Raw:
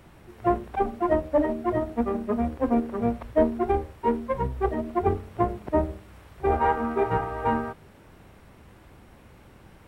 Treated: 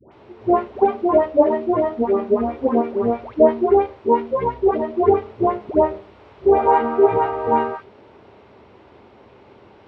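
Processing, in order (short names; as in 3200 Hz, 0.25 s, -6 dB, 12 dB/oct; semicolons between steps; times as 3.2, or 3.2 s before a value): speaker cabinet 120–4700 Hz, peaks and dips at 160 Hz -10 dB, 410 Hz +9 dB, 610 Hz +4 dB, 910 Hz +5 dB, 1700 Hz -4 dB; dispersion highs, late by 0.122 s, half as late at 920 Hz; gain +3.5 dB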